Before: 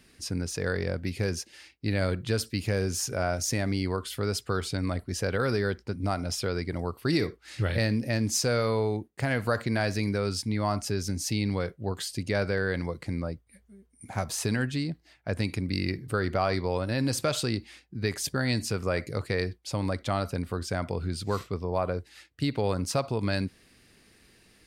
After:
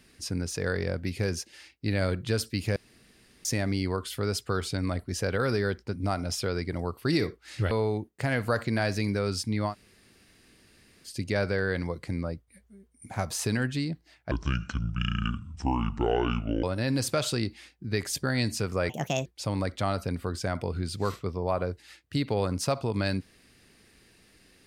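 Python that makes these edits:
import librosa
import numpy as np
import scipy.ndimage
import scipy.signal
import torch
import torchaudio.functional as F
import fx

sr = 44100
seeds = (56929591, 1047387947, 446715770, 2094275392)

y = fx.edit(x, sr, fx.room_tone_fill(start_s=2.76, length_s=0.69),
    fx.cut(start_s=7.71, length_s=0.99),
    fx.room_tone_fill(start_s=10.69, length_s=1.39, crossfade_s=0.1),
    fx.speed_span(start_s=15.3, length_s=1.44, speed=0.62),
    fx.speed_span(start_s=19.0, length_s=0.53, speed=1.45), tone=tone)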